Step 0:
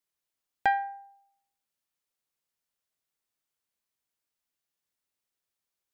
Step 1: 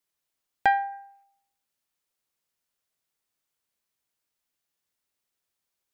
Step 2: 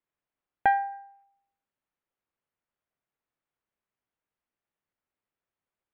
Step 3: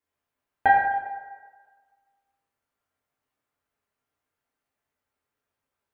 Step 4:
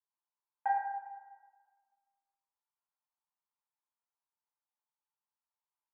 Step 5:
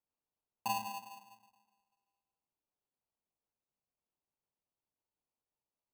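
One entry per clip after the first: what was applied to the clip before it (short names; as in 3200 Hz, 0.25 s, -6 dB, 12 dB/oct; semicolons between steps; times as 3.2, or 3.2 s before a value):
spectral gain 0.92–1.24, 990–2700 Hz +8 dB; gain +3.5 dB
Gaussian blur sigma 3.4 samples
reverb RT60 1.5 s, pre-delay 5 ms, DRR -6 dB
ladder band-pass 1000 Hz, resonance 70%; gain -6.5 dB
sample-rate reducer 1800 Hz, jitter 0%; gain -4.5 dB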